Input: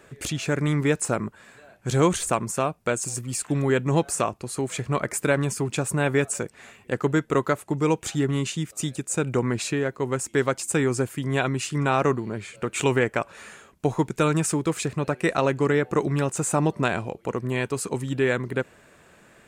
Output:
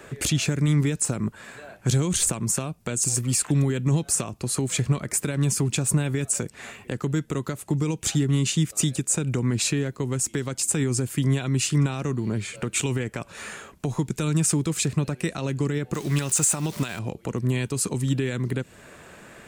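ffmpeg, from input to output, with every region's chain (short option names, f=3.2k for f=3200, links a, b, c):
-filter_complex "[0:a]asettb=1/sr,asplit=3[a][b][c];[a]atrim=end=15.944[d];[b]atrim=start=15.94:end=16.99,asetpts=PTS-STARTPTS,afade=t=in:d=0.004:c=qsin,afade=t=out:st=1.046:d=0.004:c=qsin,aeval=exprs='val(0)+0.5*0.0141*sgn(val(0))':c=same,tiltshelf=f=690:g=-5.5[e];[c]atrim=start=16.986[f];[d][e]acrossfade=d=0.004:c1=hsin:c2=qsin[g];[g][f]acrossfade=d=0.004:c1=qsin:c2=hsin,alimiter=limit=-18.5dB:level=0:latency=1:release=143,acrossover=split=270|3000[h][i][j];[i]acompressor=threshold=-41dB:ratio=6[k];[h][k][j]amix=inputs=3:normalize=0,volume=7.5dB"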